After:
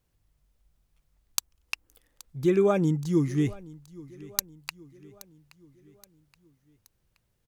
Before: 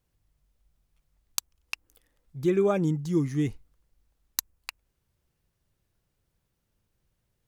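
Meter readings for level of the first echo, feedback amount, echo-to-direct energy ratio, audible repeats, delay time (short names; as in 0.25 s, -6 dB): -21.0 dB, 49%, -20.0 dB, 3, 0.824 s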